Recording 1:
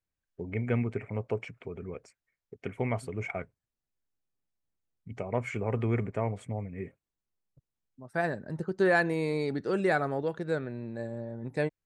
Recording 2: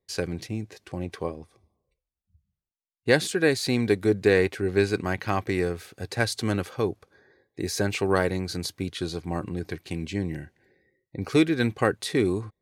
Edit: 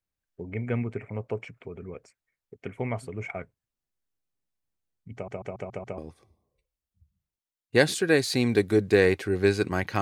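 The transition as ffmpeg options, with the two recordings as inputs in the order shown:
-filter_complex "[0:a]apad=whole_dur=10.01,atrim=end=10.01,asplit=6[s0][s1][s2][s3][s4][s5];[s0]atrim=end=5.282[s6];[s1]atrim=start=5.138:end=5.282[s7];[s2]atrim=start=5.138:end=5.282[s8];[s3]atrim=start=5.138:end=5.282[s9];[s4]atrim=start=5.138:end=5.282[s10];[s5]atrim=start=5.138:end=5.282[s11];[1:a]atrim=start=1.308:end=5.34[s12];[s6][s7]acrossfade=d=0.004:c1=hsin:c2=hsin[s13];[s13][s8]acrossfade=d=0.004:c1=hsin:c2=hsin[s14];[s14][s9]acrossfade=d=0.004:c1=hsin:c2=hsin[s15];[s15][s10]acrossfade=d=0.004:c1=hsin:c2=hsin[s16];[s16][s11]acrossfade=d=0.004:c1=hsin:c2=hsin[s17];[s17][s12]acrossfade=d=0.004:c1=hsin:c2=hsin"

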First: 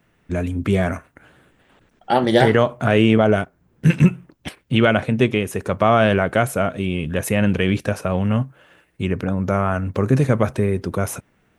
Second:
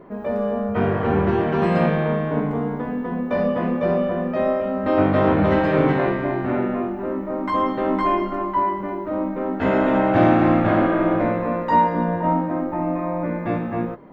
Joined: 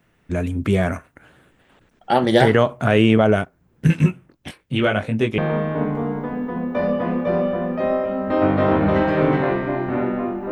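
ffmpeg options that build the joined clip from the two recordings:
-filter_complex "[0:a]asettb=1/sr,asplit=3[s0][s1][s2];[s0]atrim=end=3.874[s3];[s1]atrim=start=3.87:end=5.38,asetpts=PTS-STARTPTS,afade=t=in:d=0.004:c=qsin,afade=t=out:st=1.506:d=0.004:c=qsin,flanger=delay=18.5:depth=3.1:speed=0.72[s4];[s2]atrim=start=5.376[s5];[s3][s4]acrossfade=d=0.004:c1=hsin:c2=qsin[s6];[s6][s5]acrossfade=d=0.004:c1=qsin:c2=hsin,apad=whole_dur=10.51,atrim=end=10.51,atrim=end=5.382[s7];[1:a]atrim=start=1.938:end=7.07[s8];[s7][s8]acrossfade=d=0.004:c1=hsin:c2=hsin"

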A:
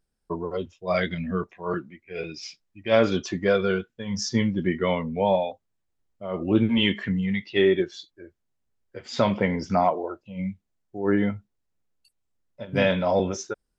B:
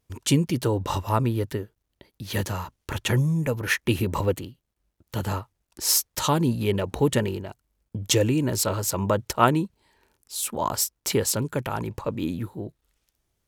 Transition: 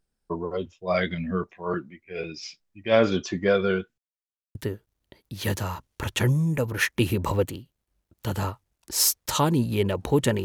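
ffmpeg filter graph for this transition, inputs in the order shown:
-filter_complex "[0:a]apad=whole_dur=10.44,atrim=end=10.44,asplit=2[s0][s1];[s0]atrim=end=3.98,asetpts=PTS-STARTPTS,afade=t=out:st=3.976:d=0.004:c=hsin[s2];[s1]atrim=start=3.98:end=4.55,asetpts=PTS-STARTPTS,volume=0[s3];[1:a]atrim=start=1.44:end=7.33,asetpts=PTS-STARTPTS,afade=t=in:d=0.004:c=hsin[s4];[s2][s3][s4]concat=n=3:v=0:a=1"

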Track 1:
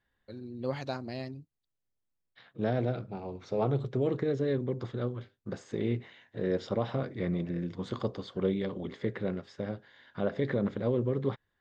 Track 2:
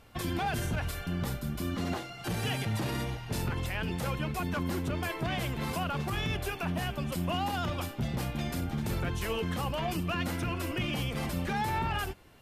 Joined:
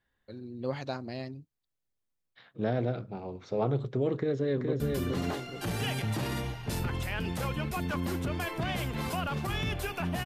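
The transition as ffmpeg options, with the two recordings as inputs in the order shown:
-filter_complex "[0:a]apad=whole_dur=10.25,atrim=end=10.25,atrim=end=4.802[s0];[1:a]atrim=start=1.428:end=6.88[s1];[s0][s1]acrossfade=d=0.004:c1=hsin:c2=hsin,asplit=2[s2][s3];[s3]afade=t=in:st=4.14:d=0.01,afade=t=out:st=4.8:d=0.01,aecho=0:1:420|840|1260|1680|2100:0.668344|0.267338|0.106935|0.042774|0.0171096[s4];[s2][s4]amix=inputs=2:normalize=0"

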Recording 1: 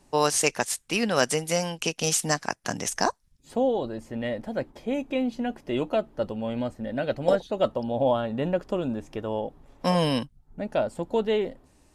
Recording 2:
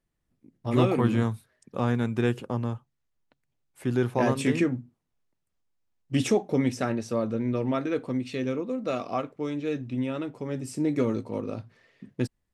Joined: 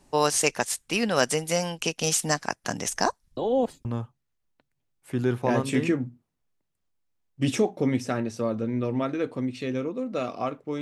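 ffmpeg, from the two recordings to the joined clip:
-filter_complex "[0:a]apad=whole_dur=10.81,atrim=end=10.81,asplit=2[s0][s1];[s0]atrim=end=3.372[s2];[s1]atrim=start=3.368:end=3.852,asetpts=PTS-STARTPTS,areverse[s3];[1:a]atrim=start=2.568:end=9.53[s4];[s2][s3]acrossfade=d=0.004:c1=hsin:c2=hsin[s5];[s5][s4]acrossfade=d=0.004:c1=hsin:c2=hsin"

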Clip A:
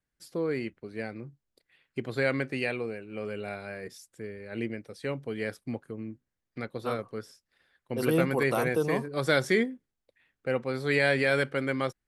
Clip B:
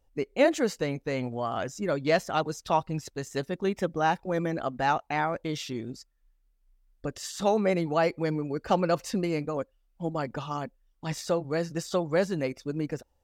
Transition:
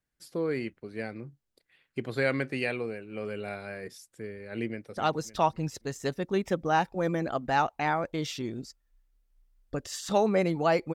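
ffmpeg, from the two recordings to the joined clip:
-filter_complex "[0:a]apad=whole_dur=10.94,atrim=end=10.94,atrim=end=4.972[s0];[1:a]atrim=start=2.278:end=8.25[s1];[s0][s1]acrossfade=d=0.004:c1=hsin:c2=hsin,asplit=2[s2][s3];[s3]afade=t=in:st=4.68:d=0.01,afade=t=out:st=4.97:d=0.01,aecho=0:1:280|560|840|1120|1400:0.316228|0.142302|0.0640361|0.0288163|0.0129673[s4];[s2][s4]amix=inputs=2:normalize=0"

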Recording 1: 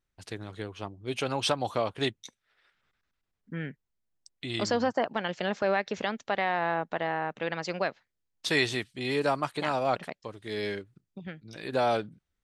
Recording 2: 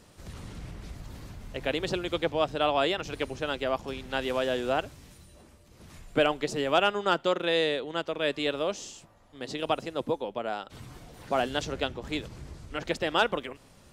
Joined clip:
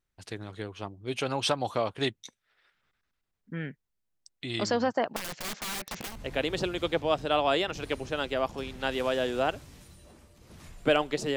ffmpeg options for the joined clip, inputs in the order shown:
-filter_complex "[0:a]asettb=1/sr,asplit=3[s0][s1][s2];[s0]atrim=end=5.164[s3];[s1]atrim=start=5.16:end=6.21,asetpts=PTS-STARTPTS,afade=t=in:d=0.004:c=qsin,afade=t=out:st=1.046:d=0.004:c=qsin,aeval=exprs='(mod(31.6*val(0)+1,2)-1)/31.6':c=same[s4];[s2]atrim=start=6.206[s5];[s3][s4]acrossfade=d=0.004:c1=hsin:c2=qsin[s6];[s6][s5]acrossfade=d=0.004:c1=qsin:c2=hsin,apad=whole_dur=11.36,atrim=end=11.36,atrim=end=6.21,asetpts=PTS-STARTPTS[s7];[1:a]atrim=start=1.33:end=6.66,asetpts=PTS-STARTPTS[s8];[s7][s8]acrossfade=d=0.18:c1=tri:c2=tri"

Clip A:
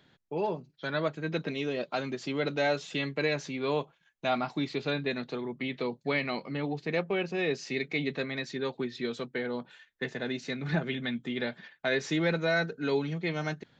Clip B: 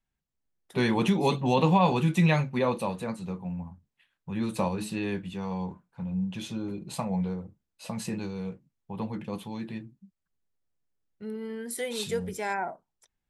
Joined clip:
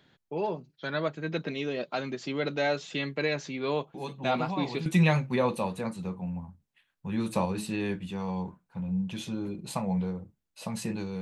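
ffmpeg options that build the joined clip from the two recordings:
-filter_complex "[1:a]asplit=2[s0][s1];[0:a]apad=whole_dur=11.21,atrim=end=11.21,atrim=end=4.862[s2];[s1]atrim=start=2.088:end=8.44[s3];[s0]atrim=start=1.17:end=2.09,asetpts=PTS-STARTPTS,volume=0.237,afade=t=in:d=0.004:c=hsin,afade=t=out:st=0.916:d=0.004:c=hsin,adelay=3940[s4];[s2][s3]acrossfade=d=0.004:c1=hsin:c2=hsin[s5];[s5][s4]amix=inputs=2:normalize=0"

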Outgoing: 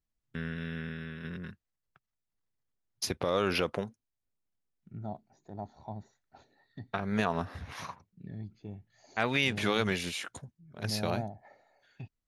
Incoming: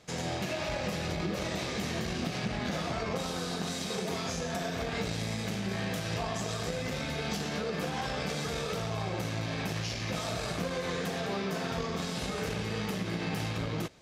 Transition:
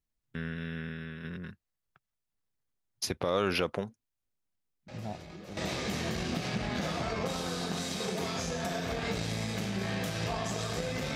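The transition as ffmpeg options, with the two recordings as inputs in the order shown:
-filter_complex "[1:a]asplit=2[s0][s1];[0:a]apad=whole_dur=11.15,atrim=end=11.15,atrim=end=5.572[s2];[s1]atrim=start=1.468:end=7.05[s3];[s0]atrim=start=0.78:end=1.47,asetpts=PTS-STARTPTS,volume=0.2,afade=t=in:d=0.004:c=hsin,afade=t=out:st=0.686:d=0.004:c=hsin,adelay=4880[s4];[s2][s3]acrossfade=d=0.004:c1=hsin:c2=hsin[s5];[s5][s4]amix=inputs=2:normalize=0"

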